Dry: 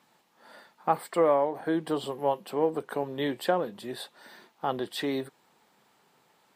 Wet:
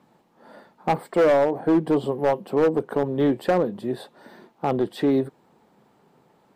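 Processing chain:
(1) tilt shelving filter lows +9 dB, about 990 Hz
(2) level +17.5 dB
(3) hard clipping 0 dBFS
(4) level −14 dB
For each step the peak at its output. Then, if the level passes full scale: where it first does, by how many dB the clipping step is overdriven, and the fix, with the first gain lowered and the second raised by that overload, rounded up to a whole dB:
−8.0, +9.5, 0.0, −14.0 dBFS
step 2, 9.5 dB
step 2 +7.5 dB, step 4 −4 dB

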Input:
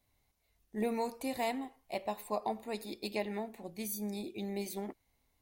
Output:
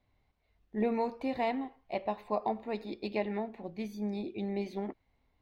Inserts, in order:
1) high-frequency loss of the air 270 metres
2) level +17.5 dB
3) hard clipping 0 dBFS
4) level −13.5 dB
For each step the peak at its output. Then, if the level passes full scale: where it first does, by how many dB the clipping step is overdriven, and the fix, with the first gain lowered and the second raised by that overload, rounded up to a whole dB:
−23.0, −5.5, −5.5, −19.0 dBFS
no step passes full scale

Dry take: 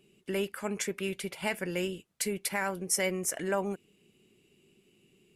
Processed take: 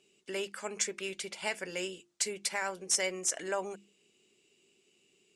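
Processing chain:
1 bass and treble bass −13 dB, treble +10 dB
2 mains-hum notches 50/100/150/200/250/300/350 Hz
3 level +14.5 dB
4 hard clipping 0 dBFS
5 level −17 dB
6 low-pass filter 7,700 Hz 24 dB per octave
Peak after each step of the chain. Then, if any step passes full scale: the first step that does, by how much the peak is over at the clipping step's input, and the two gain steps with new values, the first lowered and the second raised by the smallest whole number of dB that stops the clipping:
−5.5, −5.5, +9.0, 0.0, −17.0, −16.0 dBFS
step 3, 9.0 dB
step 3 +5.5 dB, step 5 −8 dB

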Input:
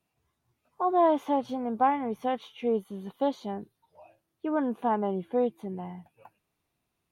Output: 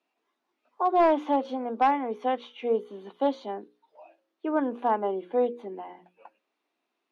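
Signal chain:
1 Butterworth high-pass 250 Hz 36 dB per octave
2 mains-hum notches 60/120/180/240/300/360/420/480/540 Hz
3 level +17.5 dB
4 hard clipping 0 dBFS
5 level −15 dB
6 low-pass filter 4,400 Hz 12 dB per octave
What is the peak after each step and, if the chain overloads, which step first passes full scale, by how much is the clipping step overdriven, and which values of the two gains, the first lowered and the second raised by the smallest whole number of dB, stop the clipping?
−12.5, −12.5, +5.0, 0.0, −15.0, −14.5 dBFS
step 3, 5.0 dB
step 3 +12.5 dB, step 5 −10 dB

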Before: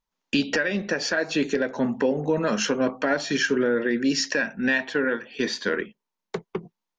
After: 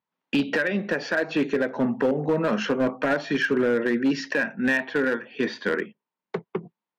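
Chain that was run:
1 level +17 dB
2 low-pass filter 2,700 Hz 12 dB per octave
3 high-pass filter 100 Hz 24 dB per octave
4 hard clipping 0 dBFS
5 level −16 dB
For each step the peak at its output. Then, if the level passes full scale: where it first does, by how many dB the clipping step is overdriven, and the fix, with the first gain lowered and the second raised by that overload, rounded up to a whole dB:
+5.0, +4.5, +6.0, 0.0, −16.0 dBFS
step 1, 6.0 dB
step 1 +11 dB, step 5 −10 dB

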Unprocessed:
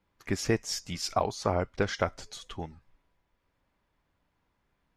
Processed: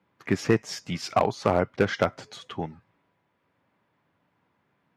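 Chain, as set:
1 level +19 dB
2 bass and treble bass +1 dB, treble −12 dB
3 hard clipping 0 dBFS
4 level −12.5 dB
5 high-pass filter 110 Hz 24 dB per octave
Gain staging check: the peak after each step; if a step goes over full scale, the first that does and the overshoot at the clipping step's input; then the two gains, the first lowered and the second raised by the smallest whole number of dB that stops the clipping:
+7.5, +7.5, 0.0, −12.5, −6.5 dBFS
step 1, 7.5 dB
step 1 +11 dB, step 4 −4.5 dB

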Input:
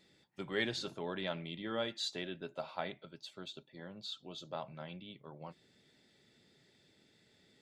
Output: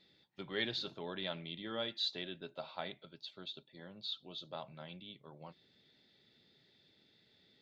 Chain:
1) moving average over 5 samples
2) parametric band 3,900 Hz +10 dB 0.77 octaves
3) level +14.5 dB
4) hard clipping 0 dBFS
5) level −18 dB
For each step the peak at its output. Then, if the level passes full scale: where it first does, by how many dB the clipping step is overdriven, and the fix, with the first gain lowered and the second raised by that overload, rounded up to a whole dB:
−21.0, −18.5, −4.0, −4.0, −22.0 dBFS
no step passes full scale

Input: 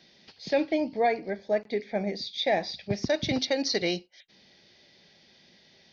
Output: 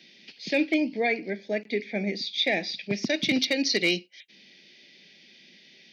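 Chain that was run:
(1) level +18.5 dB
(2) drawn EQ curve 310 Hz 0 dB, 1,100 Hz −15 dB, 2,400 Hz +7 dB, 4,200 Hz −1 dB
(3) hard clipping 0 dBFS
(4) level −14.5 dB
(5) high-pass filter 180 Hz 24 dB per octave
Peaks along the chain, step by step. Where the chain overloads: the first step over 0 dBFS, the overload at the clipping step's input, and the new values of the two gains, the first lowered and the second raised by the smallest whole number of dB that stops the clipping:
+4.0, +4.0, 0.0, −14.5, −11.0 dBFS
step 1, 4.0 dB
step 1 +14.5 dB, step 4 −10.5 dB

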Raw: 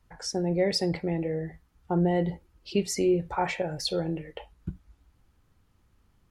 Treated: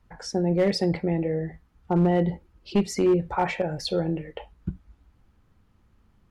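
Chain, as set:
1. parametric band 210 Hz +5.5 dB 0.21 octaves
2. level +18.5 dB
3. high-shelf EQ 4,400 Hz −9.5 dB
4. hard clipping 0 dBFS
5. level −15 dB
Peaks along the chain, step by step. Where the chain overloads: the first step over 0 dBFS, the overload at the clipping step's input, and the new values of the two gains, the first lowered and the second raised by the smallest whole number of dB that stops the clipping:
−12.0, +6.5, +6.5, 0.0, −15.0 dBFS
step 2, 6.5 dB
step 2 +11.5 dB, step 5 −8 dB

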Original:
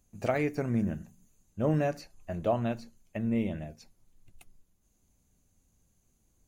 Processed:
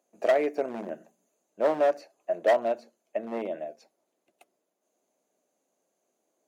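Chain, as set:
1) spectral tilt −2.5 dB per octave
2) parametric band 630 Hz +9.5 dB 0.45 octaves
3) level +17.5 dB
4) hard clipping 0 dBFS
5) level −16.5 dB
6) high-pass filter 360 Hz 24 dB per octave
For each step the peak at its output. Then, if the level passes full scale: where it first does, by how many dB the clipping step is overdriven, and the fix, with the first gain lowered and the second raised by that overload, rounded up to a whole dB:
−11.0, −8.0, +9.5, 0.0, −16.5, −10.5 dBFS
step 3, 9.5 dB
step 3 +7.5 dB, step 5 −6.5 dB

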